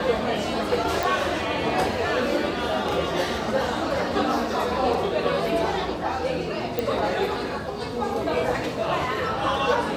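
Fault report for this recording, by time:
1.03 pop
6.79 pop -11 dBFS

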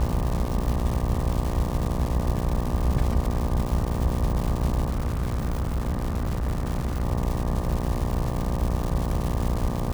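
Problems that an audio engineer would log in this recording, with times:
buzz 60 Hz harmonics 20 -29 dBFS
crackle 370/s -28 dBFS
4.9–7.04 clipped -22 dBFS

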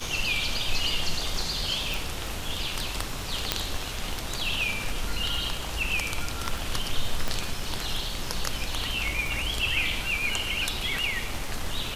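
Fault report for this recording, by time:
crackle 23/s -33 dBFS
1.94 pop
3.52 pop -5 dBFS
7.28 pop -13 dBFS

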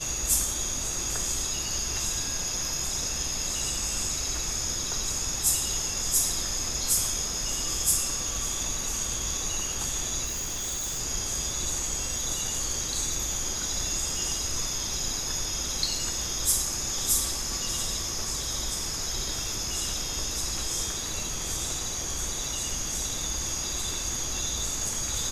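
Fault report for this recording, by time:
10.24–11 clipped -28.5 dBFS

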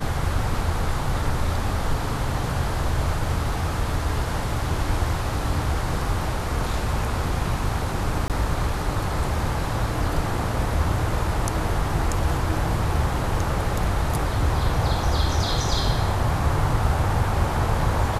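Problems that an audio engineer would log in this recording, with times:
8.28–8.3 gap 18 ms

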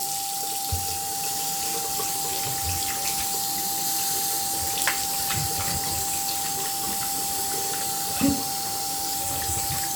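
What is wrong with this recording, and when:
tone 790 Hz -32 dBFS

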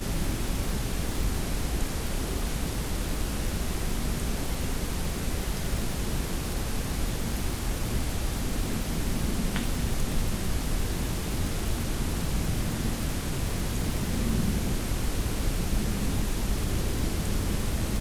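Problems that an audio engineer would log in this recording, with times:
crackle 130/s -31 dBFS
4.55 gap 2.5 ms

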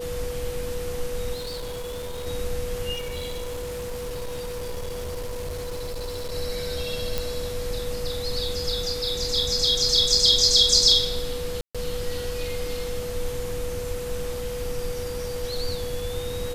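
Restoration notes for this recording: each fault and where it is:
tone 490 Hz -30 dBFS
1.34–2.27 clipped -29.5 dBFS
2.93–6.33 clipped -28 dBFS
7.18 pop
11.61–11.75 gap 0.136 s

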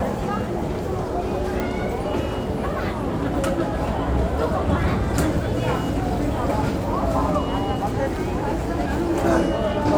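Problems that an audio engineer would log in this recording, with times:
1.6 pop -12 dBFS

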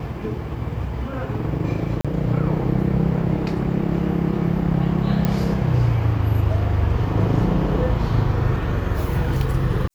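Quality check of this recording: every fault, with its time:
2.01–2.05 gap 36 ms
5.25 pop -8 dBFS

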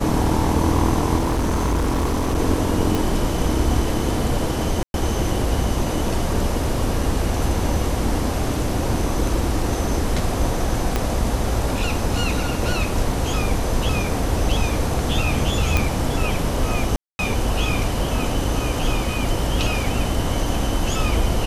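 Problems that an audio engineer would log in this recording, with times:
1.16–2.39 clipped -16.5 dBFS
2.95 pop
4.83–4.94 gap 0.111 s
10.96 pop -6 dBFS
15.77 pop -4 dBFS
16.96–17.19 gap 0.231 s

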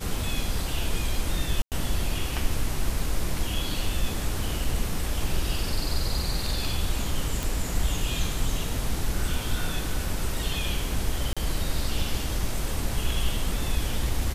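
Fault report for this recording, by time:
1.62–1.72 gap 98 ms
7.43 pop
11.33–11.37 gap 36 ms

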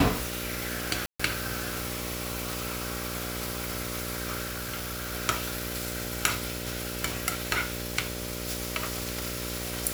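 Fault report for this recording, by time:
buzz 60 Hz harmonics 10 -37 dBFS
1.06–1.2 gap 0.135 s
4.46–5.14 clipped -29.5 dBFS

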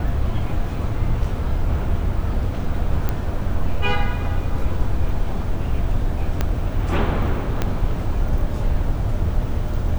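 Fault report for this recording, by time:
1.24 gap 3.9 ms
3.09 pop -10 dBFS
6.41 pop -7 dBFS
7.62 pop -7 dBFS

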